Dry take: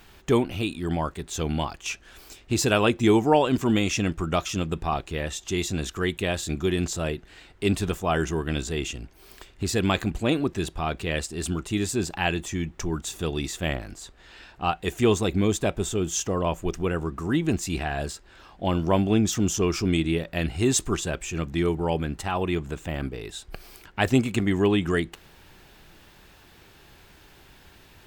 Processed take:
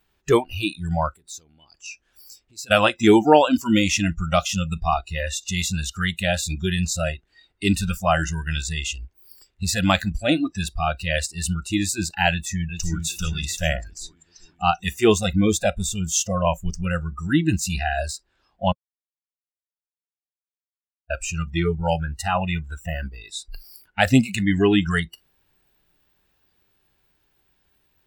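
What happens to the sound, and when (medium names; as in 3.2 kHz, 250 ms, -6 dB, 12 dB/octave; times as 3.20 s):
1.15–2.71 s: compression 3:1, threshold -40 dBFS
12.30–13.05 s: echo throw 390 ms, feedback 65%, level -5 dB
18.72–21.10 s: mute
whole clip: spectral noise reduction 24 dB; trim +6 dB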